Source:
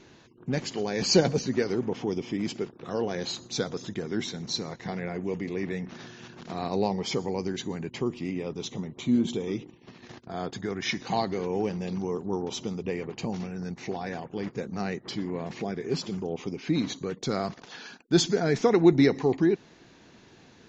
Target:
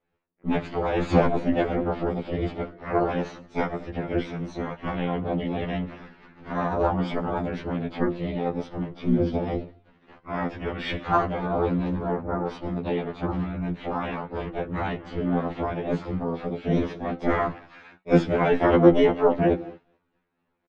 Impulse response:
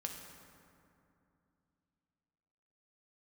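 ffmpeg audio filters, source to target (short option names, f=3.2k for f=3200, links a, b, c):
-filter_complex "[0:a]highpass=110,equalizer=f=120:t=q:w=4:g=5,equalizer=f=200:t=q:w=4:g=5,equalizer=f=400:t=q:w=4:g=-4,equalizer=f=840:t=q:w=4:g=5,equalizer=f=1.3k:t=q:w=4:g=6,lowpass=f=2.4k:w=0.5412,lowpass=f=2.4k:w=1.3066,asplit=2[a][b];[b]adelay=215,lowpass=f=910:p=1,volume=-20dB,asplit=2[c][d];[d]adelay=215,lowpass=f=910:p=1,volume=0.23[e];[c][e]amix=inputs=2:normalize=0[f];[a][f]amix=inputs=2:normalize=0,acontrast=36,tremolo=f=130:d=0.974,equalizer=f=490:w=2.8:g=4,bandreject=f=332.1:t=h:w=4,bandreject=f=664.2:t=h:w=4,agate=range=-33dB:threshold=-35dB:ratio=3:detection=peak,flanger=delay=3.3:depth=8.7:regen=90:speed=0.16:shape=triangular,asplit=2[g][h];[h]asetrate=66075,aresample=44100,atempo=0.66742,volume=-3dB[i];[g][i]amix=inputs=2:normalize=0,afftfilt=real='re*2*eq(mod(b,4),0)':imag='im*2*eq(mod(b,4),0)':win_size=2048:overlap=0.75,volume=6.5dB"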